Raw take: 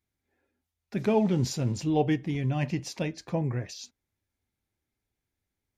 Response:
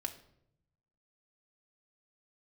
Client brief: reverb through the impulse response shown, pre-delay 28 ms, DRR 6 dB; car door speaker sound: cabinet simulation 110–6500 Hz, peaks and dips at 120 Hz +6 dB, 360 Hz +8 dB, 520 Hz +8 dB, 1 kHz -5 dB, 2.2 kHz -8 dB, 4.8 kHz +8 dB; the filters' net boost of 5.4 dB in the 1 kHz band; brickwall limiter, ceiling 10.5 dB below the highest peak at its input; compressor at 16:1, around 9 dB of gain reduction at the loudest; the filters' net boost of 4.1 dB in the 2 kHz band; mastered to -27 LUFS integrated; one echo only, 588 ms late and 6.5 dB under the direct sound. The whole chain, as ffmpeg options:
-filter_complex "[0:a]equalizer=f=1000:t=o:g=7.5,equalizer=f=2000:t=o:g=7,acompressor=threshold=0.0562:ratio=16,alimiter=level_in=1.41:limit=0.0631:level=0:latency=1,volume=0.708,aecho=1:1:588:0.473,asplit=2[s0][s1];[1:a]atrim=start_sample=2205,adelay=28[s2];[s1][s2]afir=irnorm=-1:irlink=0,volume=0.531[s3];[s0][s3]amix=inputs=2:normalize=0,highpass=110,equalizer=f=120:t=q:w=4:g=6,equalizer=f=360:t=q:w=4:g=8,equalizer=f=520:t=q:w=4:g=8,equalizer=f=1000:t=q:w=4:g=-5,equalizer=f=2200:t=q:w=4:g=-8,equalizer=f=4800:t=q:w=4:g=8,lowpass=f=6500:w=0.5412,lowpass=f=6500:w=1.3066,volume=1.88"

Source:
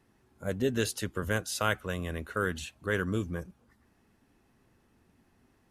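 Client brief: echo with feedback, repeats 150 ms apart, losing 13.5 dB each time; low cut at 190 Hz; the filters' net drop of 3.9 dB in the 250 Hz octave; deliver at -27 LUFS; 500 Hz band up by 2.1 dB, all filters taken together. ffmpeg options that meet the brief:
-af "highpass=190,equalizer=f=250:t=o:g=-4.5,equalizer=f=500:t=o:g=4,aecho=1:1:150|300:0.211|0.0444,volume=1.88"

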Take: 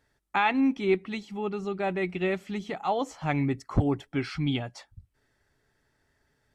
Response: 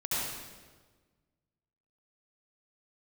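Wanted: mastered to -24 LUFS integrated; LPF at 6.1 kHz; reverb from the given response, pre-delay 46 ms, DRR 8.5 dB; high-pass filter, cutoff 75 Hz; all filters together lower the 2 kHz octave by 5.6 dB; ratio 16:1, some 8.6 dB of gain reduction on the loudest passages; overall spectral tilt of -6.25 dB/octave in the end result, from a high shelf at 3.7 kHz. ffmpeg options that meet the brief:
-filter_complex "[0:a]highpass=75,lowpass=6100,equalizer=f=2000:t=o:g=-6,highshelf=f=3700:g=-3.5,acompressor=threshold=0.0447:ratio=16,asplit=2[s0][s1];[1:a]atrim=start_sample=2205,adelay=46[s2];[s1][s2]afir=irnorm=-1:irlink=0,volume=0.158[s3];[s0][s3]amix=inputs=2:normalize=0,volume=2.99"

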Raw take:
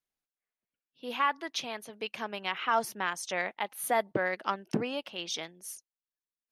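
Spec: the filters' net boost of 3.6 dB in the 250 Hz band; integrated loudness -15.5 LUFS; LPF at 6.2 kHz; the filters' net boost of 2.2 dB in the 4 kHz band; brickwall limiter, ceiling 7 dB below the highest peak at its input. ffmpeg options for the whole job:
-af "lowpass=6200,equalizer=f=250:t=o:g=4.5,equalizer=f=4000:t=o:g=3.5,volume=8.41,alimiter=limit=0.841:level=0:latency=1"

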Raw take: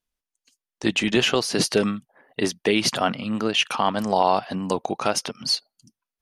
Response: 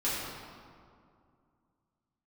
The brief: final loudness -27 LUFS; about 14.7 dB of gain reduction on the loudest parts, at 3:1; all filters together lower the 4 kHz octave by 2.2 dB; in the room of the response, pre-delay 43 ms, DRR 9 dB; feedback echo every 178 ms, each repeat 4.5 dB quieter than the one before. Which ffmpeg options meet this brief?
-filter_complex "[0:a]equalizer=f=4000:t=o:g=-3,acompressor=threshold=0.0158:ratio=3,aecho=1:1:178|356|534|712|890|1068|1246|1424|1602:0.596|0.357|0.214|0.129|0.0772|0.0463|0.0278|0.0167|0.01,asplit=2[s0][s1];[1:a]atrim=start_sample=2205,adelay=43[s2];[s1][s2]afir=irnorm=-1:irlink=0,volume=0.133[s3];[s0][s3]amix=inputs=2:normalize=0,volume=2.24"

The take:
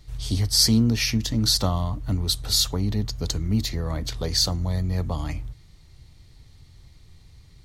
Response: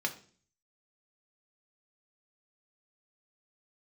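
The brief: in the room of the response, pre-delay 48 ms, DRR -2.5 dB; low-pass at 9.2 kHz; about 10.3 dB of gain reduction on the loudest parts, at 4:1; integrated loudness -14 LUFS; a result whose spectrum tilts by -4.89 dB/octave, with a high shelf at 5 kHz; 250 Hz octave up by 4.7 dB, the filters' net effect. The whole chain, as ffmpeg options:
-filter_complex "[0:a]lowpass=9200,equalizer=f=250:t=o:g=5.5,highshelf=f=5000:g=-8.5,acompressor=threshold=0.0631:ratio=4,asplit=2[s0][s1];[1:a]atrim=start_sample=2205,adelay=48[s2];[s1][s2]afir=irnorm=-1:irlink=0,volume=0.75[s3];[s0][s3]amix=inputs=2:normalize=0,volume=3.76"

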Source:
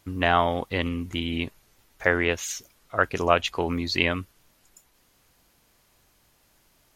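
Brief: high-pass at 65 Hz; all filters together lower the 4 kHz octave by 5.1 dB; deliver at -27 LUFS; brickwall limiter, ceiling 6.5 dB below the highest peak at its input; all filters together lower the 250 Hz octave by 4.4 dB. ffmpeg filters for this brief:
-af "highpass=65,equalizer=f=250:t=o:g=-5.5,equalizer=f=4000:t=o:g=-7.5,volume=1.33,alimiter=limit=0.355:level=0:latency=1"

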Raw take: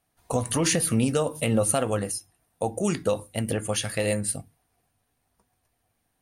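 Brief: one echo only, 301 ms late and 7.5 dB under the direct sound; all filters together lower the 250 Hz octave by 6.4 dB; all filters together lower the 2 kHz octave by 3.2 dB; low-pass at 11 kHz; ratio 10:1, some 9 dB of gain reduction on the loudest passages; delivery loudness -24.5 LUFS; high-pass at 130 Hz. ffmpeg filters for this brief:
-af "highpass=130,lowpass=11000,equalizer=f=250:t=o:g=-7.5,equalizer=f=2000:t=o:g=-4,acompressor=threshold=0.0316:ratio=10,aecho=1:1:301:0.422,volume=3.35"

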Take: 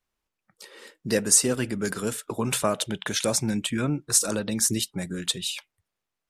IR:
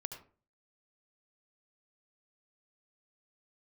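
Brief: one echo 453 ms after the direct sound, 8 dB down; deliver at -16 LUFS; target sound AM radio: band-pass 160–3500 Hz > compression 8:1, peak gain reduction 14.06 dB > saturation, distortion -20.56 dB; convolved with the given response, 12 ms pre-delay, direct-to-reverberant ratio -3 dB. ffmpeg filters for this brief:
-filter_complex "[0:a]aecho=1:1:453:0.398,asplit=2[s0][s1];[1:a]atrim=start_sample=2205,adelay=12[s2];[s1][s2]afir=irnorm=-1:irlink=0,volume=1.78[s3];[s0][s3]amix=inputs=2:normalize=0,highpass=160,lowpass=3500,acompressor=threshold=0.0355:ratio=8,asoftclip=threshold=0.0631,volume=7.94"

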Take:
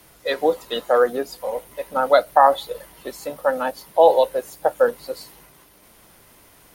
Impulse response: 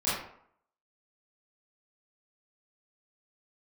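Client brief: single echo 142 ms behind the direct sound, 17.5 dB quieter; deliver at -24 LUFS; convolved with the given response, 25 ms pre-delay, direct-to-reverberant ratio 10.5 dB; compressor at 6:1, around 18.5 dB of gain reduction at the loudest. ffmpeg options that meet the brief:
-filter_complex "[0:a]acompressor=threshold=0.0355:ratio=6,aecho=1:1:142:0.133,asplit=2[s0][s1];[1:a]atrim=start_sample=2205,adelay=25[s2];[s1][s2]afir=irnorm=-1:irlink=0,volume=0.0944[s3];[s0][s3]amix=inputs=2:normalize=0,volume=2.99"

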